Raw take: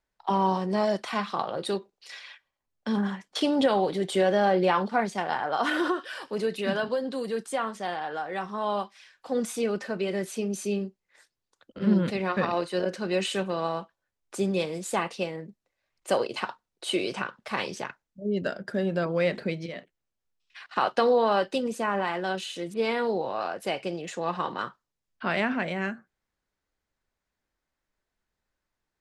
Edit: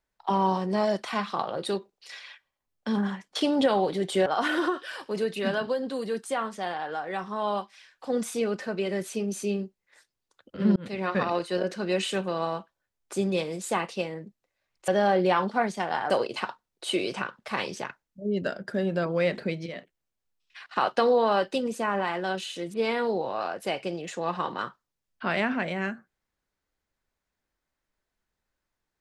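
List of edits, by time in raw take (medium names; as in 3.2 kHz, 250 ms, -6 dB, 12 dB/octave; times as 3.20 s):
4.26–5.48 s: move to 16.10 s
11.98–12.39 s: fade in equal-power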